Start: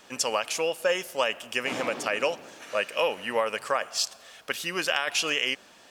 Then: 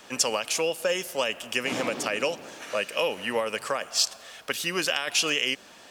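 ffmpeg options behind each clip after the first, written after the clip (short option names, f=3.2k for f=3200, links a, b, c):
-filter_complex "[0:a]acrossover=split=410|3000[a][b][c];[b]acompressor=threshold=-34dB:ratio=3[d];[a][d][c]amix=inputs=3:normalize=0,volume=4dB"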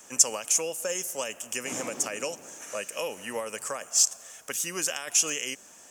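-af "highshelf=f=5.3k:t=q:w=3:g=8.5,volume=-6dB"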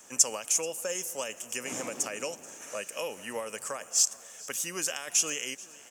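-af "aecho=1:1:432|864|1296|1728:0.0841|0.0446|0.0236|0.0125,volume=-2.5dB"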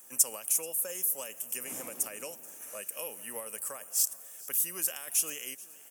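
-af "aexciter=amount=13.2:drive=2.4:freq=9.4k,volume=-7.5dB"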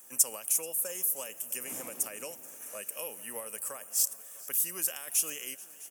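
-af "aecho=1:1:655:0.1"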